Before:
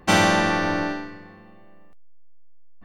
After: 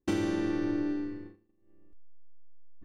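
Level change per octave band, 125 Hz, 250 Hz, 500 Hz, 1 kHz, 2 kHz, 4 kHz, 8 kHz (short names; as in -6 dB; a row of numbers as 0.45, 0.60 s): -11.5 dB, -4.5 dB, -10.0 dB, -22.5 dB, -20.5 dB, under -15 dB, under -15 dB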